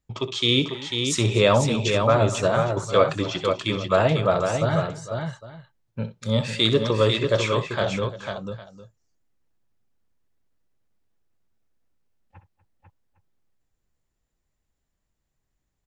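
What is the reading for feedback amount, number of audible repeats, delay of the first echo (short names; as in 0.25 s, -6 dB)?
no steady repeat, 4, 63 ms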